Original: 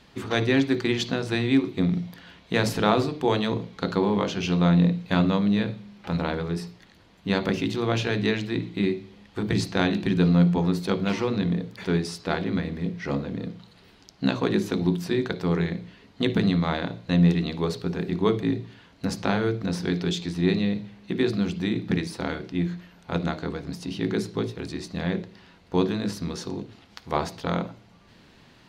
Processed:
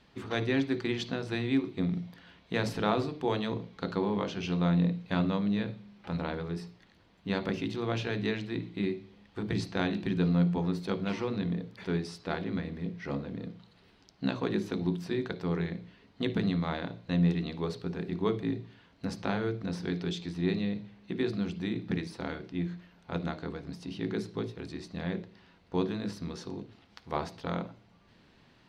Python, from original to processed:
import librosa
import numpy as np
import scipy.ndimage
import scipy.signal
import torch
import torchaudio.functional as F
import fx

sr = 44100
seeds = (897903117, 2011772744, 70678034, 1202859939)

y = fx.high_shelf(x, sr, hz=8600.0, db=-10.5)
y = fx.notch(y, sr, hz=6800.0, q=20.0)
y = F.gain(torch.from_numpy(y), -7.0).numpy()